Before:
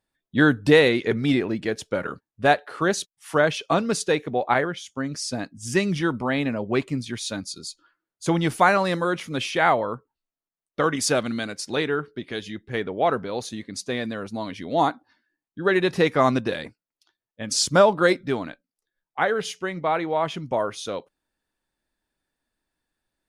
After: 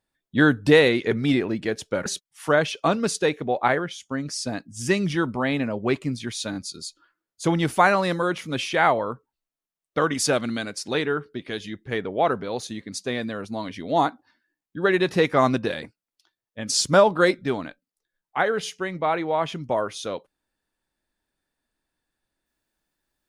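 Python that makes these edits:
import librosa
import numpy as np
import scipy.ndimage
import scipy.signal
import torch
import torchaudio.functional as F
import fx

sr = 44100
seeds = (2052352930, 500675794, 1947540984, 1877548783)

y = fx.edit(x, sr, fx.cut(start_s=2.06, length_s=0.86),
    fx.stutter(start_s=7.37, slice_s=0.02, count=3), tone=tone)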